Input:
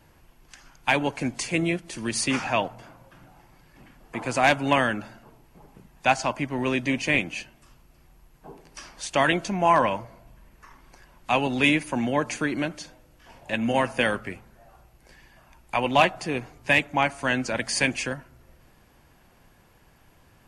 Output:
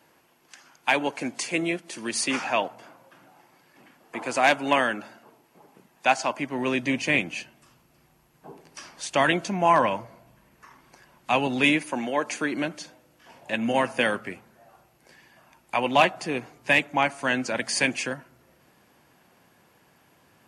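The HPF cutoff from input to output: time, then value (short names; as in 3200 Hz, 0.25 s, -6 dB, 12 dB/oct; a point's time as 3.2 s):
6.28 s 260 Hz
6.95 s 120 Hz
11.55 s 120 Hz
12.15 s 370 Hz
12.69 s 160 Hz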